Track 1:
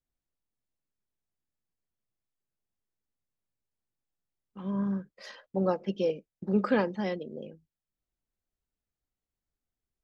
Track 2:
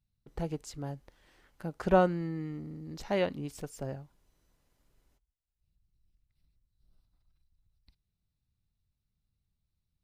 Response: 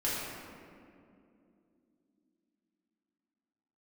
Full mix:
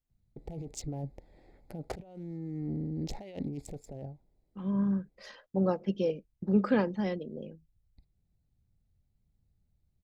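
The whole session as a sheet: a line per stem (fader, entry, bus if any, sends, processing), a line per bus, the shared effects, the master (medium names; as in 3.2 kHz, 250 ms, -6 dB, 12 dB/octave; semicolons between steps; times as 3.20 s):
-3.5 dB, 0.00 s, no send, bass shelf 230 Hz +9 dB
+1.5 dB, 0.10 s, no send, local Wiener filter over 15 samples; high-order bell 1.3 kHz -16 dB 1 oct; compressor with a negative ratio -41 dBFS, ratio -1; auto duck -11 dB, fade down 1.05 s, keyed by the first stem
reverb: none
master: none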